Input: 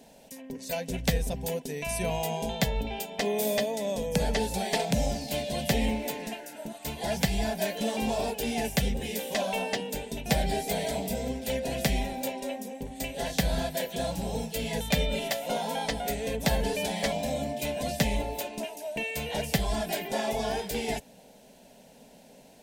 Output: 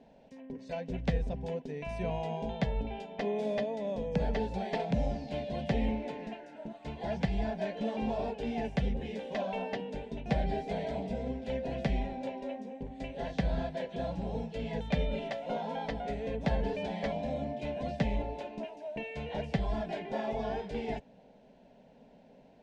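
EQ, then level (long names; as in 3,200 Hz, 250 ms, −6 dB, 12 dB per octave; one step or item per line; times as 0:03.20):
high-frequency loss of the air 55 metres
head-to-tape spacing loss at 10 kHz 27 dB
−2.5 dB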